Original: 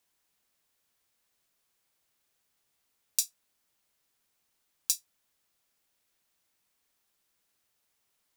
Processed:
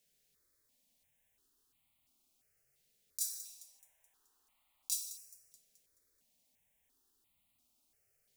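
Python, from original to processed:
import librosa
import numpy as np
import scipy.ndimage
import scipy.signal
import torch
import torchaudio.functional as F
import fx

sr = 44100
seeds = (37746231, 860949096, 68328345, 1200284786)

y = fx.high_shelf(x, sr, hz=2700.0, db=-7.0)
y = fx.echo_wet_highpass(y, sr, ms=214, feedback_pct=47, hz=5400.0, wet_db=-23.0)
y = fx.rev_fdn(y, sr, rt60_s=1.3, lf_ratio=0.75, hf_ratio=0.75, size_ms=23.0, drr_db=7.0)
y = fx.over_compress(y, sr, threshold_db=-35.0, ratio=-0.5)
y = fx.peak_eq(y, sr, hz=fx.steps((0.0, 970.0), (3.21, 150.0), (4.95, 1100.0)), db=-10.5, octaves=1.9)
y = fx.phaser_held(y, sr, hz=2.9, low_hz=290.0, high_hz=1600.0)
y = y * 10.0 ** (4.0 / 20.0)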